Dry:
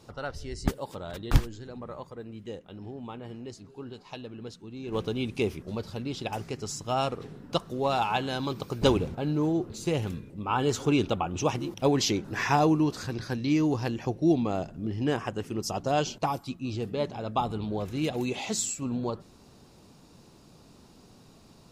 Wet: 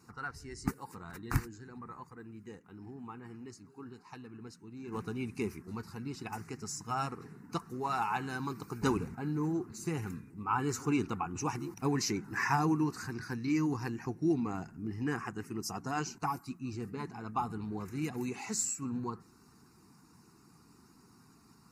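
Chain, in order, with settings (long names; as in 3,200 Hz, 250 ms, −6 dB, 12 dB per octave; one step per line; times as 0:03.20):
spectral magnitudes quantised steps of 15 dB
high-pass filter 220 Hz 6 dB per octave
phaser with its sweep stopped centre 1,400 Hz, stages 4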